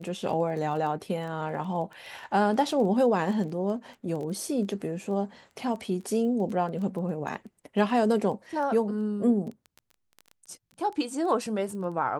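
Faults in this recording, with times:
surface crackle 10 per second −34 dBFS

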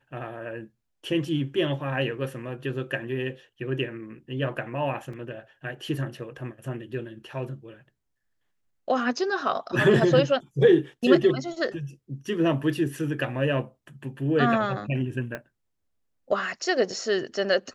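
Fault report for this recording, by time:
0:05.13: drop-out 3.8 ms
0:15.35: click −19 dBFS

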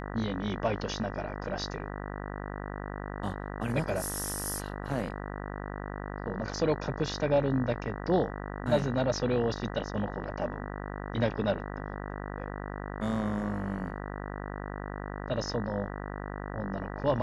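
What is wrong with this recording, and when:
mains buzz 50 Hz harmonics 39 −38 dBFS

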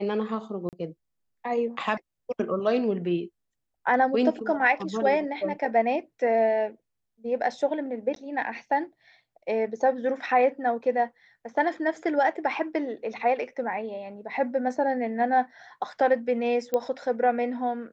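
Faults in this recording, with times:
0:00.69–0:00.73: drop-out 38 ms
0:08.15–0:08.16: drop-out 12 ms
0:16.74: click −14 dBFS

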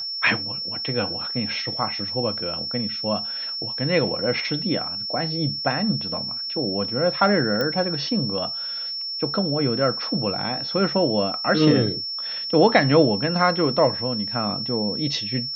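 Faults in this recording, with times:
whistle 5,400 Hz −27 dBFS
0:07.61: click −12 dBFS

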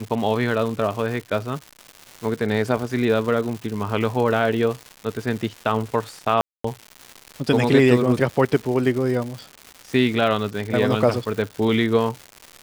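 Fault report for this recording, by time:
surface crackle 300 per second −29 dBFS
0:06.41–0:06.64: drop-out 234 ms

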